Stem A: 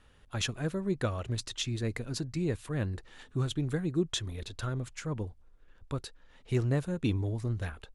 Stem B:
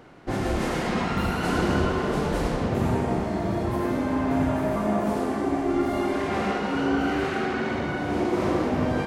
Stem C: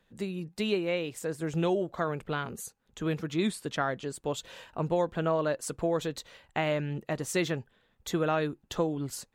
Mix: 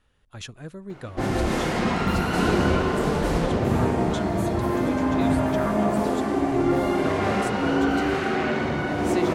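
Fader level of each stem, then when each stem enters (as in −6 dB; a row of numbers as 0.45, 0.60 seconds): −5.5, +2.0, −4.0 decibels; 0.00, 0.90, 1.80 seconds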